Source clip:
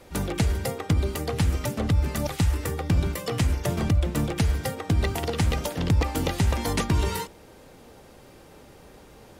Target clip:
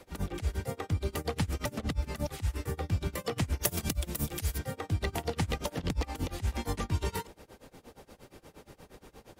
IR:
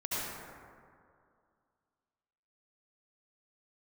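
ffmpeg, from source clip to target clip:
-filter_complex "[0:a]acrossover=split=86|2300[link_01][link_02][link_03];[link_01]acompressor=threshold=-29dB:ratio=4[link_04];[link_02]acompressor=threshold=-29dB:ratio=4[link_05];[link_03]acompressor=threshold=-38dB:ratio=4[link_06];[link_04][link_05][link_06]amix=inputs=3:normalize=0,asplit=3[link_07][link_08][link_09];[link_07]afade=type=out:start_time=3.61:duration=0.02[link_10];[link_08]aemphasis=mode=production:type=75fm,afade=type=in:start_time=3.61:duration=0.02,afade=type=out:start_time=4.57:duration=0.02[link_11];[link_09]afade=type=in:start_time=4.57:duration=0.02[link_12];[link_10][link_11][link_12]amix=inputs=3:normalize=0,tremolo=f=8.5:d=0.94"

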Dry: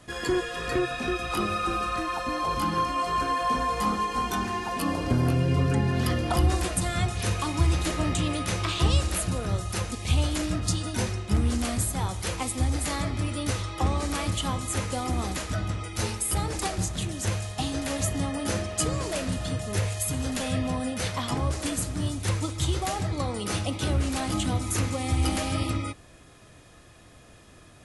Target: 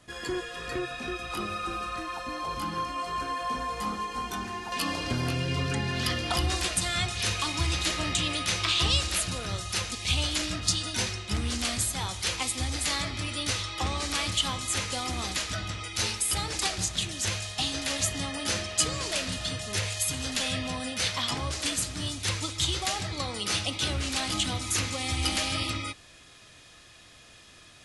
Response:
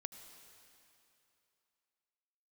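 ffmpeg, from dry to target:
-af "asetnsamples=nb_out_samples=441:pad=0,asendcmd='4.72 equalizer g 14.5',equalizer=frequency=4000:width=0.4:gain=4,volume=-7dB"

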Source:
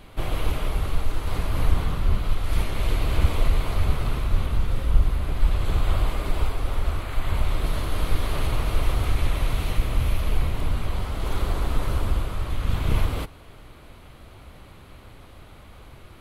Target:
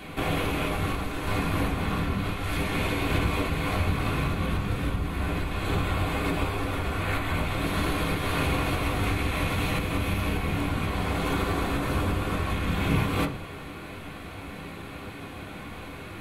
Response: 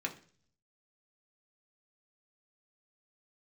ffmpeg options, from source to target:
-filter_complex "[0:a]acompressor=threshold=-28dB:ratio=2[link_01];[1:a]atrim=start_sample=2205[link_02];[link_01][link_02]afir=irnorm=-1:irlink=0,volume=8dB"

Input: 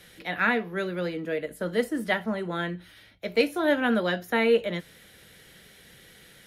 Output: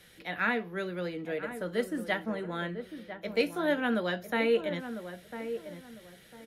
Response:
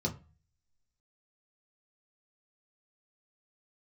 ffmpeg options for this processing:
-filter_complex "[0:a]asplit=2[link_01][link_02];[link_02]adelay=1000,lowpass=frequency=1200:poles=1,volume=-9dB,asplit=2[link_03][link_04];[link_04]adelay=1000,lowpass=frequency=1200:poles=1,volume=0.3,asplit=2[link_05][link_06];[link_06]adelay=1000,lowpass=frequency=1200:poles=1,volume=0.3[link_07];[link_01][link_03][link_05][link_07]amix=inputs=4:normalize=0,volume=-5dB"

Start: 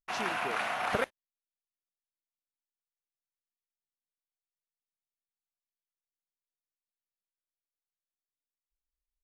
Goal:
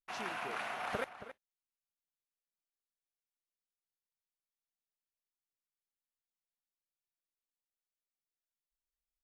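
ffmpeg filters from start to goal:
ffmpeg -i in.wav -filter_complex "[0:a]asplit=2[link_01][link_02];[link_02]adelay=274.1,volume=-12dB,highshelf=frequency=4000:gain=-6.17[link_03];[link_01][link_03]amix=inputs=2:normalize=0,volume=-7.5dB" out.wav

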